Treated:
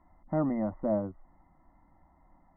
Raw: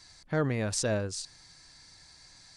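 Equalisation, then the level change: brick-wall FIR low-pass 2100 Hz; air absorption 470 m; fixed phaser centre 440 Hz, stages 6; +5.5 dB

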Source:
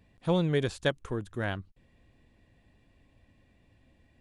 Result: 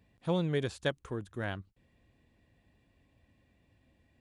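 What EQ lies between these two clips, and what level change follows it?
HPF 42 Hz; -4.0 dB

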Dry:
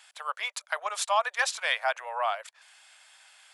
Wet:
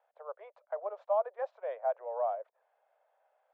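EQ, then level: Butterworth band-pass 470 Hz, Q 1.6; air absorption 73 m; +5.0 dB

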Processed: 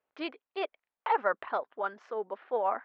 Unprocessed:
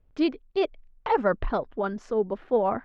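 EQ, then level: BPF 750–2800 Hz; 0.0 dB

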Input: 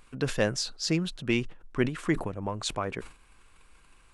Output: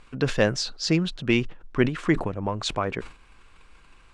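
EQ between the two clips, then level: LPF 5800 Hz 12 dB/oct; +5.0 dB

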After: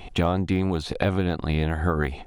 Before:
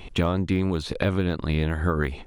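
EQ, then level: bell 740 Hz +12 dB 0.2 oct; 0.0 dB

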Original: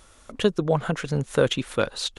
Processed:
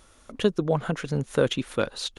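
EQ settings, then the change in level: bell 270 Hz +3 dB 1.3 oct; notch 7700 Hz, Q 15; -3.0 dB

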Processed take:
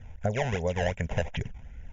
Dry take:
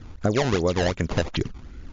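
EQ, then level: fixed phaser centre 1200 Hz, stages 6; -2.5 dB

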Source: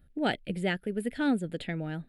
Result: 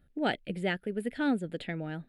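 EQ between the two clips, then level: low shelf 160 Hz -6 dB; high shelf 5600 Hz -7 dB; 0.0 dB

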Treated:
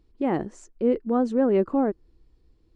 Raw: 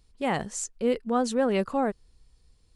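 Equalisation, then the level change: dynamic EQ 3600 Hz, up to -6 dB, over -49 dBFS, Q 0.87; tape spacing loss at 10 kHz 22 dB; bell 330 Hz +15 dB 0.56 oct; 0.0 dB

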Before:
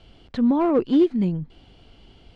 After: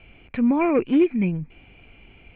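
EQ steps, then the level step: synth low-pass 2400 Hz, resonance Q 15; air absorption 350 m; 0.0 dB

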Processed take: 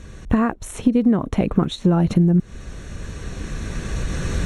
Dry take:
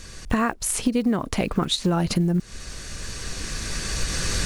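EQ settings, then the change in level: HPF 160 Hz 6 dB/oct; Butterworth band-stop 4800 Hz, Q 5; tilt -3.5 dB/oct; 0.0 dB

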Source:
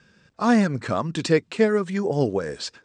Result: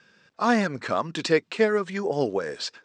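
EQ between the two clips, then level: HPF 460 Hz 6 dB/oct; LPF 6400 Hz 12 dB/oct; +1.5 dB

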